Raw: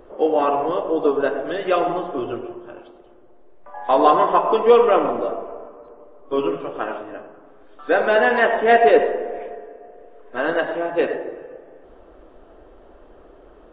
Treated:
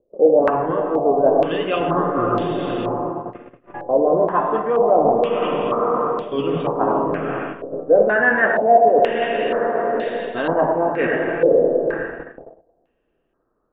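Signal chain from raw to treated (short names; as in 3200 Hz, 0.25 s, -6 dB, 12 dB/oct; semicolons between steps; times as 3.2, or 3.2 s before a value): diffused feedback echo 0.523 s, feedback 46%, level -7 dB; gate -35 dBFS, range -33 dB; bell 150 Hz +14.5 dB 1.6 oct; reverse; compressor 12:1, threshold -21 dBFS, peak gain reduction 17 dB; reverse; stepped low-pass 2.1 Hz 540–3800 Hz; gain +3.5 dB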